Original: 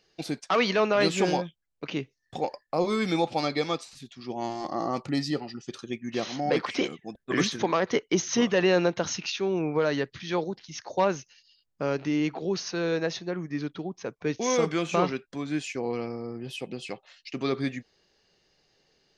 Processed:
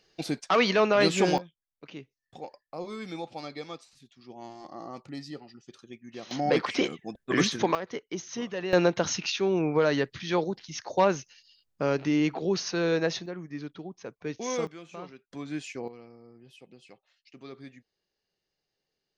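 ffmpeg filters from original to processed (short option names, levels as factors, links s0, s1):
-af "asetnsamples=n=441:p=0,asendcmd='1.38 volume volume -11.5dB;6.31 volume volume 1dB;7.75 volume volume -10.5dB;8.73 volume volume 1.5dB;13.26 volume volume -6dB;14.67 volume volume -17.5dB;15.31 volume volume -5dB;15.88 volume volume -16.5dB',volume=1.12"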